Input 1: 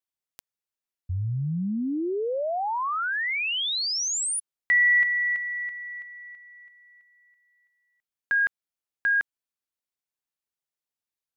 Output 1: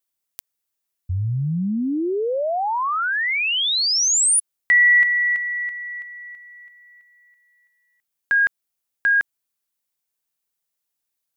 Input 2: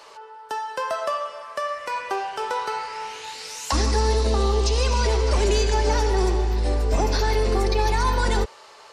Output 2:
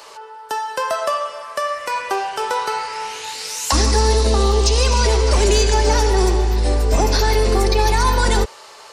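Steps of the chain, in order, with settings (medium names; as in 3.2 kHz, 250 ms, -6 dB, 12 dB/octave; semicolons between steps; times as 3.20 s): treble shelf 7.3 kHz +9.5 dB; trim +5 dB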